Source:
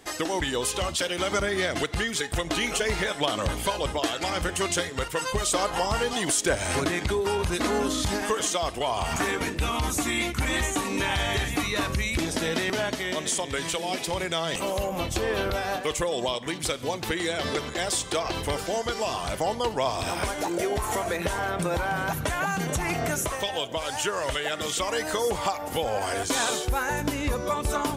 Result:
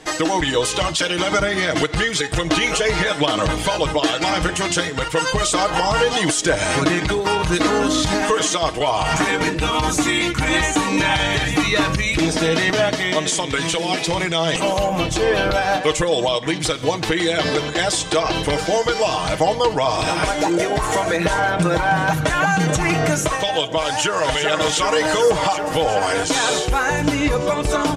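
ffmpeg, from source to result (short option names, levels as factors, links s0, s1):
-filter_complex "[0:a]asplit=2[s0][s1];[s1]afade=t=in:st=23.86:d=0.01,afade=t=out:st=24.31:d=0.01,aecho=0:1:380|760|1140|1520|1900|2280|2660|3040|3420|3800|4180|4560:0.530884|0.424708|0.339766|0.271813|0.21745|0.17396|0.139168|0.111335|0.0890676|0.0712541|0.0570033|0.0456026[s2];[s0][s2]amix=inputs=2:normalize=0,alimiter=limit=0.126:level=0:latency=1,lowpass=7500,aecho=1:1:6.4:0.59,volume=2.66"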